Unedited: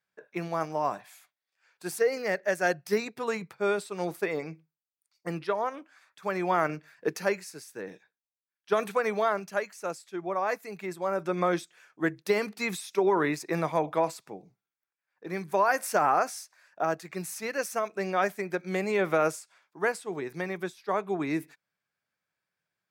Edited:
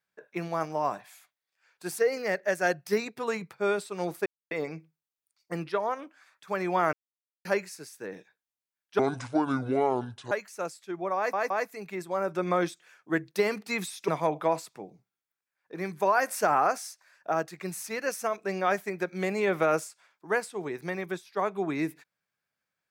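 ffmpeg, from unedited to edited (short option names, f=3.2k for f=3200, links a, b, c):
-filter_complex "[0:a]asplit=9[a][b][c][d][e][f][g][h][i];[a]atrim=end=4.26,asetpts=PTS-STARTPTS,afade=t=out:st=4.256:d=0.004:c=hsin,apad=pad_dur=0.25[j];[b]atrim=start=4.26:end=6.68,asetpts=PTS-STARTPTS,afade=t=in:d=0.004:c=hsin,afade=t=out:st=2.416:d=0.004:c=hsin[k];[c]atrim=start=6.68:end=7.2,asetpts=PTS-STARTPTS,volume=0[l];[d]atrim=start=7.2:end=8.744,asetpts=PTS-STARTPTS,afade=t=in:d=0.004:c=hsin[m];[e]atrim=start=8.74:end=9.56,asetpts=PTS-STARTPTS,asetrate=27342,aresample=44100[n];[f]atrim=start=9.556:end=10.582[o];[g]atrim=start=10.408:end=10.582[p];[h]atrim=start=10.408:end=12.992[q];[i]atrim=start=13.598[r];[j][k][l][m]concat=n=4:v=0:a=1[s];[s][n]acrossfade=d=0.004:c1=hsin:c2=hsin[t];[t][o]acrossfade=d=0.004:c1=hsin:c2=hsin[u];[u][p]acrossfade=d=0.004:c1=hsin:c2=hsin[v];[v][q]acrossfade=d=0.004:c1=hsin:c2=hsin[w];[w][r]acrossfade=d=0.004:c1=hsin:c2=hsin"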